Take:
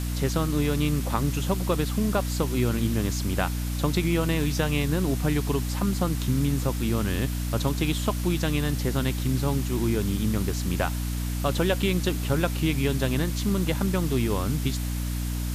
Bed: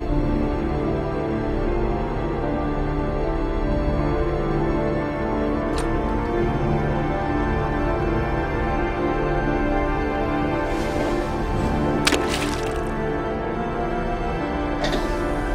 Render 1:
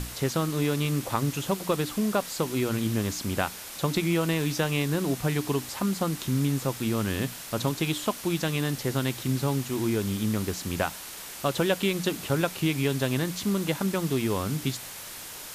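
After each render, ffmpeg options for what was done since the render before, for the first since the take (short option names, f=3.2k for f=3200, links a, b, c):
-af "bandreject=f=60:t=h:w=6,bandreject=f=120:t=h:w=6,bandreject=f=180:t=h:w=6,bandreject=f=240:t=h:w=6,bandreject=f=300:t=h:w=6"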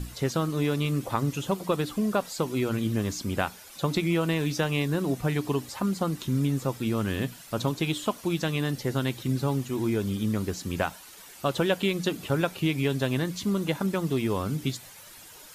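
-af "afftdn=nr=11:nf=-41"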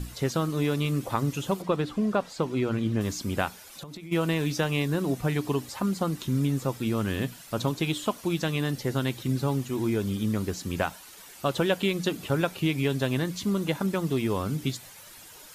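-filter_complex "[0:a]asettb=1/sr,asplit=3[a][b][c];[a]atrim=end=1.624[d];[b]atrim=start=1.62:end=3.01,asetpts=PTS-STARTPTS,afade=t=in:d=0.004:c=qsin,afade=t=out:st=1.386:d=0.004:c=qsin,aemphasis=mode=reproduction:type=50fm[e];[c]atrim=start=3.006[f];[d][e]acrossfade=d=0.004:c1=hsin:c2=qsin[g];[g][f]acrossfade=d=0.004:c1=qsin:c2=hsin,asplit=3[h][i][j];[h]afade=t=out:st=3.66:d=0.02[k];[i]acompressor=threshold=-37dB:ratio=20:attack=3.2:release=140:knee=1:detection=peak,afade=t=in:st=3.66:d=0.02,afade=t=out:st=4.11:d=0.02[l];[j]afade=t=in:st=4.11:d=0.02[m];[k][l][m]amix=inputs=3:normalize=0"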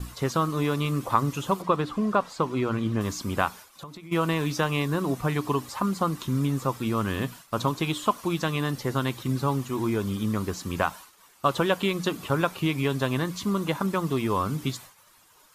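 -af "equalizer=f=1.1k:w=2.5:g=10,agate=range=-33dB:threshold=-38dB:ratio=3:detection=peak"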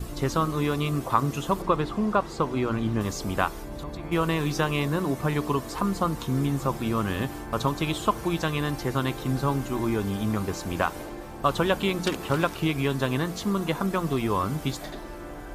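-filter_complex "[1:a]volume=-15.5dB[a];[0:a][a]amix=inputs=2:normalize=0"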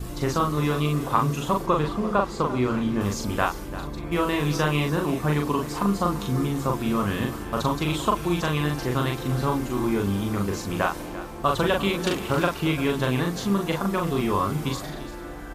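-filter_complex "[0:a]asplit=2[a][b];[b]adelay=40,volume=-3dB[c];[a][c]amix=inputs=2:normalize=0,aecho=1:1:343:0.188"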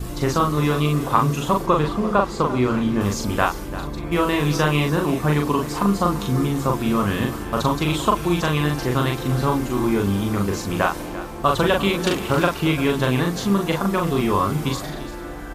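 -af "volume=4dB"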